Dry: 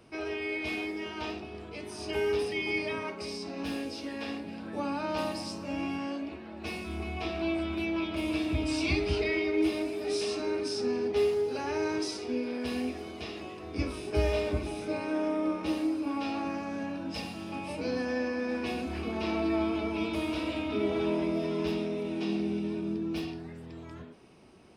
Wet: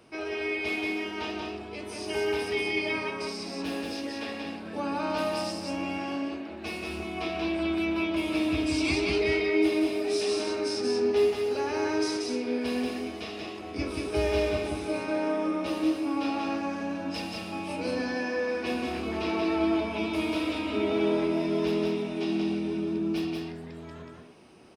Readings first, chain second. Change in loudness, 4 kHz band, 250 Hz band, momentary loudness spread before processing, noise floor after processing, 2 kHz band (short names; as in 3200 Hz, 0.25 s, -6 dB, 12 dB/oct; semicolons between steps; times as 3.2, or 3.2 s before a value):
+3.0 dB, +4.0 dB, +3.0 dB, 10 LU, -41 dBFS, +3.5 dB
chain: low shelf 150 Hz -8 dB; on a send: echo 0.183 s -3 dB; on the sum: gain +2 dB